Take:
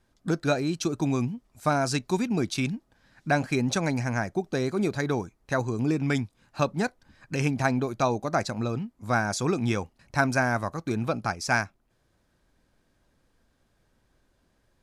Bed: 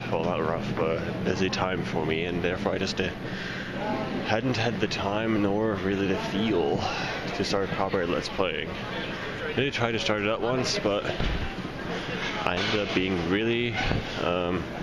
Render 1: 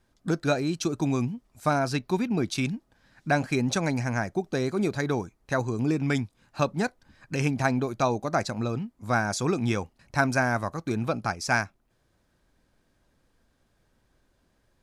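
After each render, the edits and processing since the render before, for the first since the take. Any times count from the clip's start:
0:01.79–0:02.46: parametric band 7,600 Hz −10 dB 0.96 octaves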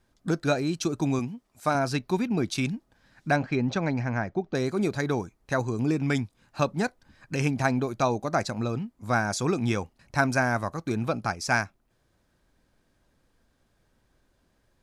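0:01.19–0:01.75: low-shelf EQ 130 Hz −12 dB
0:03.36–0:04.55: high-frequency loss of the air 190 metres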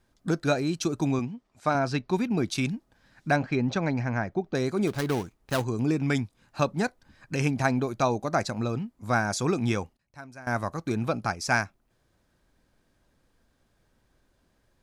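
0:01.11–0:02.13: Bessel low-pass filter 5,000 Hz
0:04.87–0:05.64: gap after every zero crossing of 0.19 ms
0:09.67–0:10.77: duck −20.5 dB, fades 0.30 s logarithmic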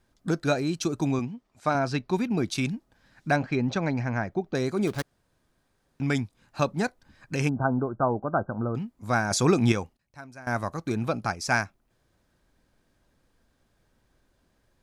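0:05.02–0:06.00: fill with room tone
0:07.49–0:08.75: linear-phase brick-wall low-pass 1,600 Hz
0:09.31–0:09.72: clip gain +5 dB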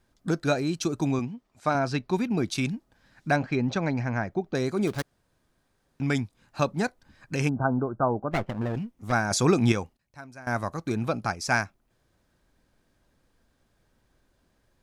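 0:08.31–0:09.12: lower of the sound and its delayed copy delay 0.35 ms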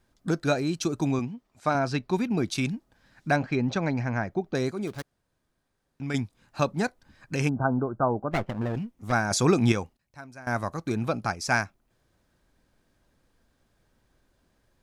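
0:04.71–0:06.14: clip gain −6 dB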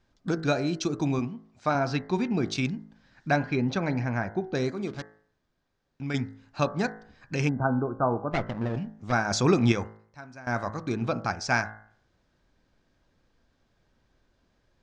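low-pass filter 6,400 Hz 24 dB per octave
hum removal 53.74 Hz, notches 39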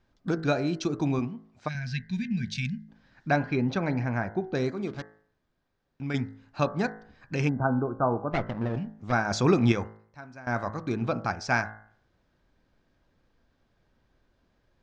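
high-shelf EQ 6,500 Hz −10.5 dB
0:01.68–0:02.89: gain on a spectral selection 250–1,500 Hz −27 dB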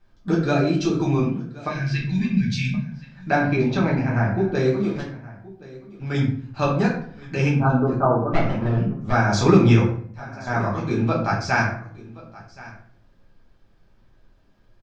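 single-tap delay 1,074 ms −20 dB
rectangular room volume 54 cubic metres, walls mixed, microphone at 1.2 metres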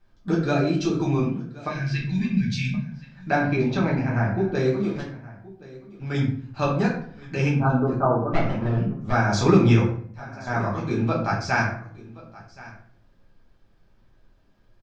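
level −2 dB

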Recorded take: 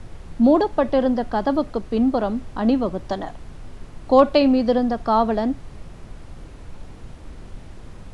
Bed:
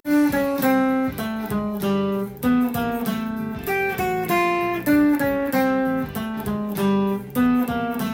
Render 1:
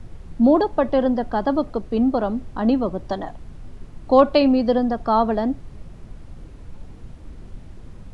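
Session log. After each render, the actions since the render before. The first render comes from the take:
broadband denoise 6 dB, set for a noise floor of −40 dBFS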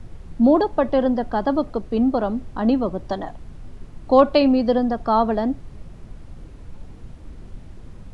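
no processing that can be heard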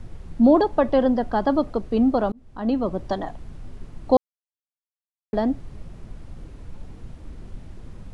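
0:02.32–0:02.95: fade in
0:04.17–0:05.33: silence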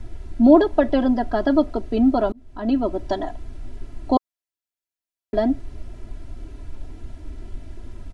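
notch filter 1,100 Hz, Q 7.6
comb filter 3 ms, depth 79%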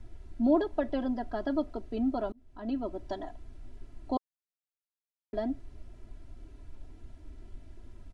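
level −12.5 dB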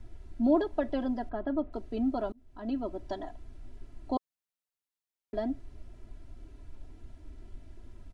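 0:01.29–0:01.73: high-frequency loss of the air 460 metres

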